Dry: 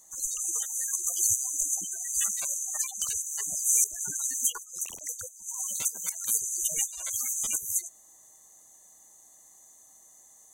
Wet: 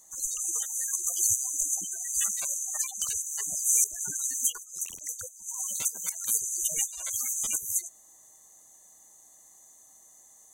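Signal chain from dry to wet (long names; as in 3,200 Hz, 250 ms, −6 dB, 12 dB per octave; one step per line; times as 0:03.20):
0:04.19–0:05.13: parametric band 740 Hz −11.5 dB 1.4 octaves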